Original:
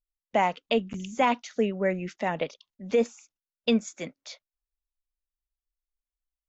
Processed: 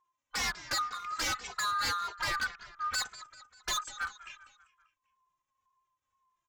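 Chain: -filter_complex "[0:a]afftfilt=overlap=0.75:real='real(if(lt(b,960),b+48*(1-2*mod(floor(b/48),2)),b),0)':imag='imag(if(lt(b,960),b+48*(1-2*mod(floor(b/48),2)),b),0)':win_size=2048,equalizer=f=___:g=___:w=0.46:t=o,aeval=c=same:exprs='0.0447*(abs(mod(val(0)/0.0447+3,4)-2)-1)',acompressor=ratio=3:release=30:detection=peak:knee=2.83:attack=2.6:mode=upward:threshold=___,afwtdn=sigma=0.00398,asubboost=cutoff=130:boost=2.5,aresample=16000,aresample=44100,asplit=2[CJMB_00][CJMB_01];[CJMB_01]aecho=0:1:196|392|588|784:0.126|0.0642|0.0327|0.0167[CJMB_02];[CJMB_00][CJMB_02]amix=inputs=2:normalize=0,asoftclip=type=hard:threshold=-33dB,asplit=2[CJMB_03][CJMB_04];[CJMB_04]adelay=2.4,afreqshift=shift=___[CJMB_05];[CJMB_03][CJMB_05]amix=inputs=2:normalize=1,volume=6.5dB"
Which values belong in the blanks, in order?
4500, -14.5, -52dB, -1.9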